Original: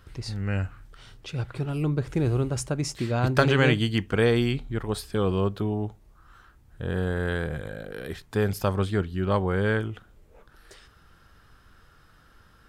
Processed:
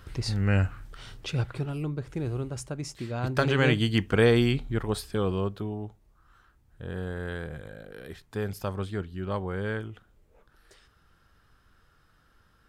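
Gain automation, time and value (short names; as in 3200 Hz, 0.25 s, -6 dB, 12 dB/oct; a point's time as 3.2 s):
1.29 s +4 dB
1.92 s -7 dB
3.14 s -7 dB
3.99 s +1 dB
4.77 s +1 dB
5.8 s -7 dB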